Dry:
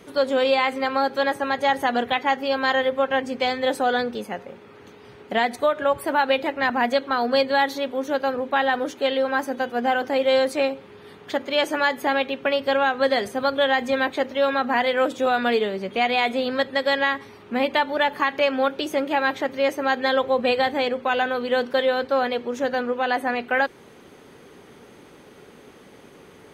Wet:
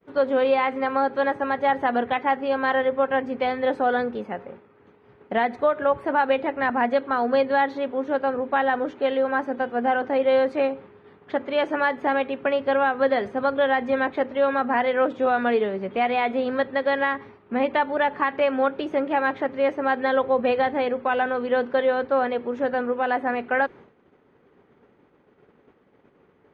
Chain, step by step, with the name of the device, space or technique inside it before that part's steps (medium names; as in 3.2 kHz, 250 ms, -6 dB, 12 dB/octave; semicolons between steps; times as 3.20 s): hearing-loss simulation (low-pass 1.9 kHz 12 dB/octave; expander -39 dBFS)